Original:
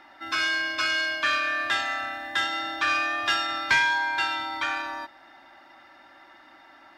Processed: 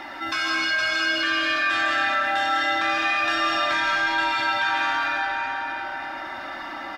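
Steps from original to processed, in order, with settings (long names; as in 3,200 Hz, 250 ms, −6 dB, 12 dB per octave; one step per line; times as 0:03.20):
brickwall limiter −20.5 dBFS, peak gain reduction 8.5 dB
flanger 0.87 Hz, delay 0.3 ms, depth 1.5 ms, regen −71%
on a send: single-tap delay 553 ms −14.5 dB
on the sum: comb and all-pass reverb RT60 3.1 s, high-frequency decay 0.6×, pre-delay 105 ms, DRR −4.5 dB
envelope flattener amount 50%
level +3.5 dB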